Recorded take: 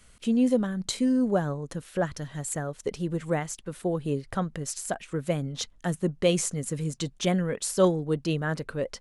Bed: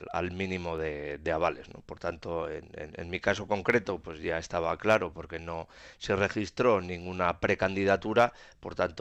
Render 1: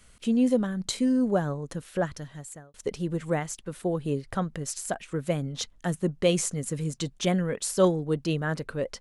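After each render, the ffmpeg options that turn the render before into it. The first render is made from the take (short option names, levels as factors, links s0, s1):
-filter_complex "[0:a]asplit=2[s0][s1];[s0]atrim=end=2.74,asetpts=PTS-STARTPTS,afade=t=out:st=1.99:d=0.75[s2];[s1]atrim=start=2.74,asetpts=PTS-STARTPTS,afade=t=in:d=0.004:c=hsin[s3];[s2][s3]concat=n=2:v=0:a=1"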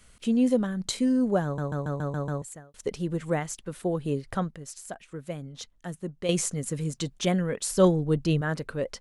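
-filter_complex "[0:a]asettb=1/sr,asplit=3[s0][s1][s2];[s0]atrim=end=7.704[s3];[s1]atrim=start=7.7:end=8.41,asetpts=PTS-STARTPTS,afade=t=in:d=0.004:c=qsin,afade=t=out:st=0.706:d=0.004:c=qsin,lowshelf=f=130:g=11.5[s4];[s2]atrim=start=8.406[s5];[s3][s4]acrossfade=d=0.004:c1=hsin:c2=qsin[s6];[s6][s5]acrossfade=d=0.004:c1=qsin:c2=hsin,asplit=10[s7][s8][s9][s10][s11][s12][s13][s14][s15][s16];[s7]atrim=end=1.582[s17];[s8]atrim=start=1.438:end=1.582[s18];[s9]atrim=start=1.438:end=1.582[s19];[s10]atrim=start=1.438:end=1.582[s20];[s11]atrim=start=1.438:end=1.582[s21];[s12]atrim=start=1.438:end=1.582[s22];[s13]atrim=start=1.438:end=1.582[s23];[s14]atrim=start=2.418:end=4.512[s24];[s15]atrim=start=4.508:end=6.292,asetpts=PTS-STARTPTS,volume=0.398[s25];[s16]atrim=start=6.288[s26];[s17][s18]acrossfade=d=0.004:c1=hsin:c2=hsin[s27];[s27][s19]acrossfade=d=0.004:c1=hsin:c2=hsin[s28];[s28][s20]acrossfade=d=0.004:c1=hsin:c2=hsin[s29];[s29][s21]acrossfade=d=0.004:c1=hsin:c2=hsin[s30];[s30][s22]acrossfade=d=0.004:c1=hsin:c2=hsin[s31];[s31][s23]acrossfade=d=0.004:c1=hsin:c2=hsin[s32];[s32][s24]acrossfade=d=0.004:c1=hsin:c2=hsin[s33];[s33][s25]acrossfade=d=0.004:c1=hsin:c2=hsin[s34];[s34][s26]acrossfade=d=0.004:c1=hsin:c2=hsin"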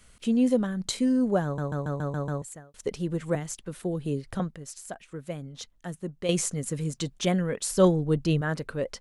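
-filter_complex "[0:a]asettb=1/sr,asplit=3[s0][s1][s2];[s0]atrim=end=3.354[s3];[s1]atrim=start=3.35:end=4.4,asetpts=PTS-STARTPTS,afade=t=in:d=0.004:c=qsin,afade=t=out:st=1.046:d=0.004:c=qsin,acrossover=split=450|3000[s4][s5][s6];[s5]acompressor=threshold=0.01:ratio=6:attack=3.2:release=140:knee=2.83:detection=peak[s7];[s4][s7][s6]amix=inputs=3:normalize=0[s8];[s2]atrim=start=4.396[s9];[s3][s8]acrossfade=d=0.004:c1=hsin:c2=qsin[s10];[s10][s9]acrossfade=d=0.004:c1=qsin:c2=hsin"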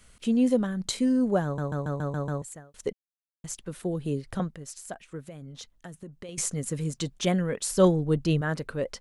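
-filter_complex "[0:a]asettb=1/sr,asplit=3[s0][s1][s2];[s0]atrim=end=5.204[s3];[s1]atrim=start=5.2:end=6.38,asetpts=PTS-STARTPTS,afade=t=in:d=0.004:c=qsin,afade=t=out:st=1.176:d=0.004:c=qsin,acompressor=threshold=0.0141:ratio=12:attack=3.2:release=140:knee=1:detection=peak[s4];[s2]atrim=start=6.376[s5];[s3][s4]acrossfade=d=0.004:c1=hsin:c2=qsin[s6];[s6][s5]acrossfade=d=0.004:c1=qsin:c2=hsin,asplit=3[s7][s8][s9];[s7]atrim=end=2.93,asetpts=PTS-STARTPTS,afade=t=out:st=2.926:d=0.004:c=hsin[s10];[s8]atrim=start=2.93:end=3.44,asetpts=PTS-STARTPTS,volume=0[s11];[s9]atrim=start=3.44,asetpts=PTS-STARTPTS,afade=t=in:d=0.004:c=hsin[s12];[s10][s11][s12]concat=n=3:v=0:a=1"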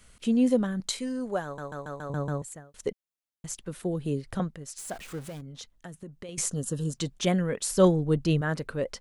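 -filter_complex "[0:a]asettb=1/sr,asplit=3[s0][s1][s2];[s0]atrim=end=0.804[s3];[s1]atrim=start=0.8:end=2.1,asetpts=PTS-STARTPTS,afade=t=in:d=0.004:c=qsin,afade=t=out:st=1.296:d=0.004:c=qsin,equalizer=f=120:w=0.35:g=-13[s4];[s2]atrim=start=2.096[s5];[s3][s4]acrossfade=d=0.004:c1=hsin:c2=qsin[s6];[s6][s5]acrossfade=d=0.004:c1=qsin:c2=hsin,asettb=1/sr,asplit=3[s7][s8][s9];[s7]atrim=end=4.784[s10];[s8]atrim=start=4.78:end=5.41,asetpts=PTS-STARTPTS,afade=t=in:d=0.004:c=qsin,afade=t=out:st=0.626:d=0.004:c=qsin,aeval=exprs='val(0)+0.5*0.00891*sgn(val(0))':c=same[s11];[s9]atrim=start=5.406[s12];[s10][s11]acrossfade=d=0.004:c1=hsin:c2=qsin[s13];[s13][s12]acrossfade=d=0.004:c1=qsin:c2=hsin,asettb=1/sr,asplit=3[s14][s15][s16];[s14]atrim=end=6.514[s17];[s15]atrim=start=6.51:end=6.93,asetpts=PTS-STARTPTS,afade=t=in:d=0.004:c=qsin,afade=t=out:st=0.416:d=0.004:c=qsin,asuperstop=centerf=2200:order=8:qfactor=2.5[s18];[s16]atrim=start=6.926[s19];[s17][s18]acrossfade=d=0.004:c1=hsin:c2=qsin[s20];[s20][s19]acrossfade=d=0.004:c1=qsin:c2=hsin"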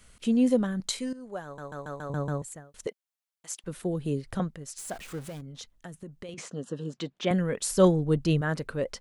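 -filter_complex "[0:a]asettb=1/sr,asplit=3[s0][s1][s2];[s0]atrim=end=2.874[s3];[s1]atrim=start=2.87:end=3.64,asetpts=PTS-STARTPTS,afade=t=in:d=0.004:c=qsin,afade=t=out:st=0.766:d=0.004:c=qsin,highpass=550[s4];[s2]atrim=start=3.636[s5];[s3][s4]acrossfade=d=0.004:c1=hsin:c2=qsin[s6];[s6][s5]acrossfade=d=0.004:c1=qsin:c2=hsin,asettb=1/sr,asplit=3[s7][s8][s9];[s7]atrim=end=6.344[s10];[s8]atrim=start=6.34:end=7.31,asetpts=PTS-STARTPTS,afade=t=in:d=0.004:c=qsin,afade=t=out:st=0.966:d=0.004:c=qsin,highpass=220,lowpass=3300[s11];[s9]atrim=start=7.306[s12];[s10][s11]acrossfade=d=0.004:c1=hsin:c2=qsin[s13];[s13][s12]acrossfade=d=0.004:c1=qsin:c2=hsin,asplit=2[s14][s15];[s14]atrim=end=1.13,asetpts=PTS-STARTPTS,afade=t=out:st=1.126:d=0.004:c=hsin:silence=0.199526[s16];[s15]atrim=start=1.13,asetpts=PTS-STARTPTS,afade=t=in:d=0.76:silence=0.199526[s17];[s16][s17]concat=n=2:v=0:a=1"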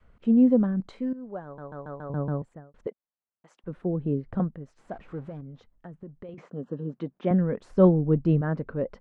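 -af "lowpass=1200,adynamicequalizer=threshold=0.0126:dfrequency=220:dqfactor=1.2:tfrequency=220:tqfactor=1.2:attack=5:release=100:ratio=0.375:range=2.5:mode=boostabove:tftype=bell"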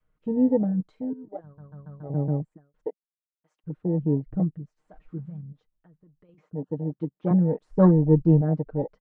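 -af "afwtdn=0.0447,aecho=1:1:6.5:0.68"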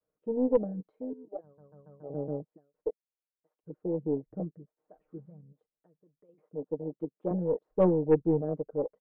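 -af "bandpass=f=480:t=q:w=1.8:csg=0,aeval=exprs='0.251*(cos(1*acos(clip(val(0)/0.251,-1,1)))-cos(1*PI/2))+0.0224*(cos(4*acos(clip(val(0)/0.251,-1,1)))-cos(4*PI/2))+0.00562*(cos(6*acos(clip(val(0)/0.251,-1,1)))-cos(6*PI/2))':c=same"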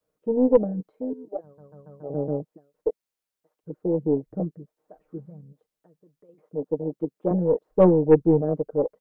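-af "volume=2.37"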